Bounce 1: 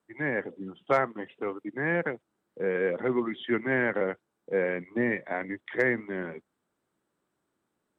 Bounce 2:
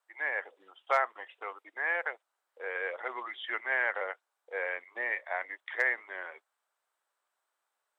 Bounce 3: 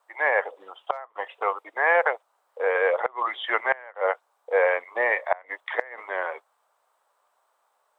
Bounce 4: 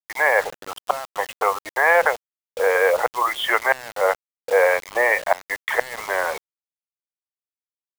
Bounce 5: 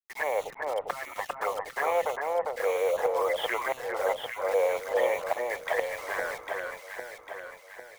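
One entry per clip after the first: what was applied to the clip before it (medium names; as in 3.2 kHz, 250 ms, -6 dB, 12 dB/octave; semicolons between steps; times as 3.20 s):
high-pass 670 Hz 24 dB/octave
high-order bell 730 Hz +9 dB; inverted gate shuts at -16 dBFS, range -25 dB; trim +8 dB
in parallel at +2 dB: compression 20:1, threshold -31 dBFS, peak gain reduction 16.5 dB; on the sum: bit crusher 6-bit; trim +2.5 dB
touch-sensitive flanger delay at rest 7.8 ms, full sweep at -16 dBFS; echo whose repeats swap between lows and highs 400 ms, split 1.7 kHz, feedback 69%, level -2 dB; trim -7 dB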